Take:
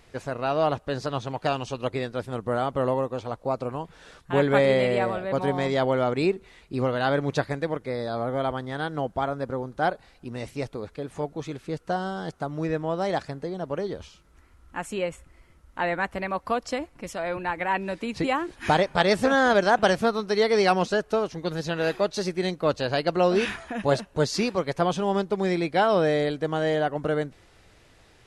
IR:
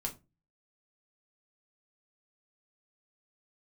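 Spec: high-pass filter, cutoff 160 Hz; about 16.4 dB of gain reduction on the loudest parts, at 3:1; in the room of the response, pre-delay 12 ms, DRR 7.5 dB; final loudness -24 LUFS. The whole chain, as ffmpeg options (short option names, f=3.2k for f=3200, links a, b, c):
-filter_complex "[0:a]highpass=160,acompressor=threshold=-39dB:ratio=3,asplit=2[a][b];[1:a]atrim=start_sample=2205,adelay=12[c];[b][c]afir=irnorm=-1:irlink=0,volume=-8.5dB[d];[a][d]amix=inputs=2:normalize=0,volume=15dB"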